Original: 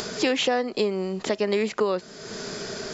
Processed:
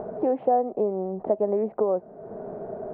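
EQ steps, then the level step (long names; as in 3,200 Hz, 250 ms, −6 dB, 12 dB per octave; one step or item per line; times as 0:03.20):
transistor ladder low-pass 800 Hz, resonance 60%
+7.0 dB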